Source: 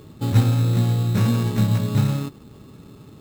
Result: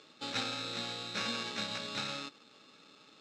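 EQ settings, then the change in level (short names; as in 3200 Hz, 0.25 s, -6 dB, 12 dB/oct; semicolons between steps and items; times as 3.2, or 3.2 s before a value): speaker cabinet 380–4800 Hz, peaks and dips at 390 Hz -9 dB, 700 Hz -5 dB, 1000 Hz -9 dB, 1900 Hz -5 dB, 3100 Hz -5 dB, 4500 Hz -4 dB; tilt +4 dB/oct; -2.5 dB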